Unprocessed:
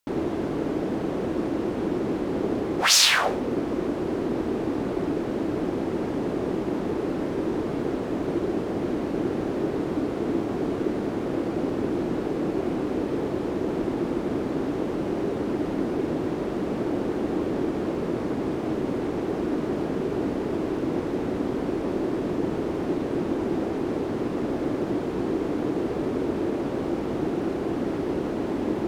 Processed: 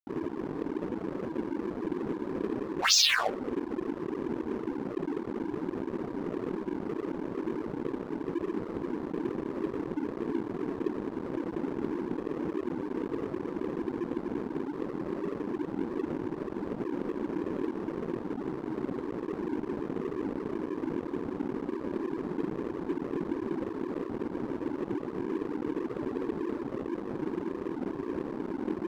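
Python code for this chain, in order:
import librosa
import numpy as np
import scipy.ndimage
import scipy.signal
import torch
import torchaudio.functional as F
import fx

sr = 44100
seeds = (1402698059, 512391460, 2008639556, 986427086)

y = fx.spec_gate(x, sr, threshold_db=-10, keep='strong')
y = np.sign(y) * np.maximum(np.abs(y) - 10.0 ** (-33.0 / 20.0), 0.0)
y = y * librosa.db_to_amplitude(-2.0)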